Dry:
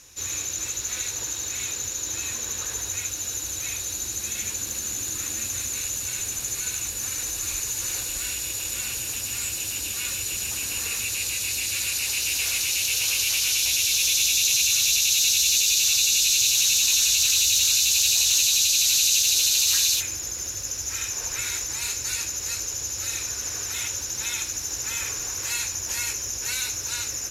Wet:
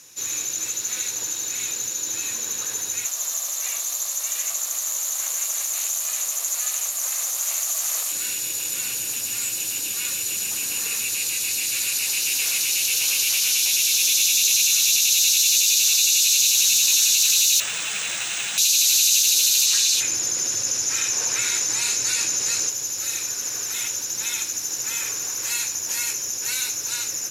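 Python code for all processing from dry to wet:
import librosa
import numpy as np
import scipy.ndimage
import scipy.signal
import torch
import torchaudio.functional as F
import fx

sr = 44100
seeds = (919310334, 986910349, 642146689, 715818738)

y = fx.chain(x, sr, fx.highpass_res(hz=860.0, q=4.7),
    fx.ring_mod(carrier_hz=240.0),
    fx.high_shelf(hz=6000.0, db=6.5), at=(3.05, 8.12))
y = fx.chain(y, sr, fx.fixed_phaser(hz=2000.0, stages=4),
    fx.resample_linear(factor=3), at=(17.6, 18.58))
y = fx.chain(y, sr, fx.lowpass(hz=9100.0, slope=12),
    fx.env_flatten(amount_pct=50), at=(19.66, 22.7))
y = scipy.signal.sosfilt(scipy.signal.butter(4, 130.0, 'highpass', fs=sr, output='sos'), y)
y = fx.high_shelf(y, sr, hz=6600.0, db=5.5)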